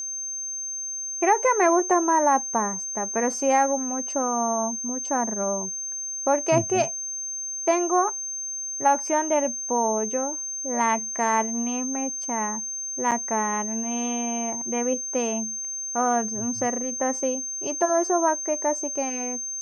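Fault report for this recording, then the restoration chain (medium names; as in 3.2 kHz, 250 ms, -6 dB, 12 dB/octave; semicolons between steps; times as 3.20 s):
whine 6.3 kHz -29 dBFS
13.11–13.12 s: dropout 7.2 ms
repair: band-stop 6.3 kHz, Q 30; interpolate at 13.11 s, 7.2 ms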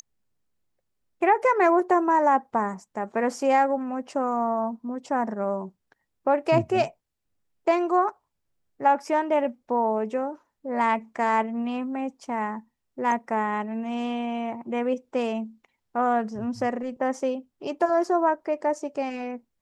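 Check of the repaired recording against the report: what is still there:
nothing left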